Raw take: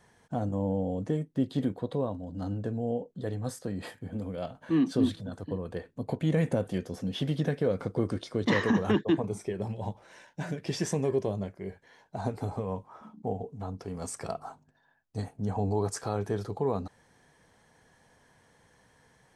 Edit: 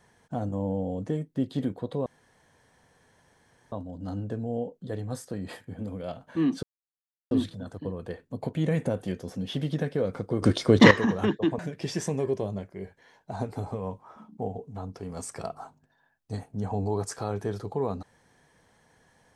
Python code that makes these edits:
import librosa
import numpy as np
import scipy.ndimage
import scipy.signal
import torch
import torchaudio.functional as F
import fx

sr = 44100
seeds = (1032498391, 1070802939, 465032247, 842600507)

y = fx.edit(x, sr, fx.insert_room_tone(at_s=2.06, length_s=1.66),
    fx.insert_silence(at_s=4.97, length_s=0.68),
    fx.clip_gain(start_s=8.08, length_s=0.49, db=11.5),
    fx.cut(start_s=9.25, length_s=1.19), tone=tone)